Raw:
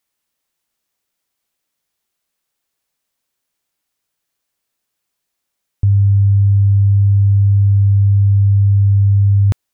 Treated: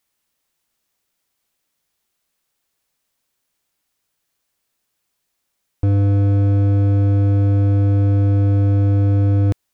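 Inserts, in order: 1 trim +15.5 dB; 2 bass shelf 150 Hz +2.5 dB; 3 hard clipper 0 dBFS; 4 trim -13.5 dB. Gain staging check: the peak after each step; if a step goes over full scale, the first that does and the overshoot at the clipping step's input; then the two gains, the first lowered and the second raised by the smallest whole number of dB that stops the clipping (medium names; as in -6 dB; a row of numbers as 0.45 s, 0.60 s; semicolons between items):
+8.0 dBFS, +10.0 dBFS, 0.0 dBFS, -13.5 dBFS; step 1, 10.0 dB; step 1 +5.5 dB, step 4 -3.5 dB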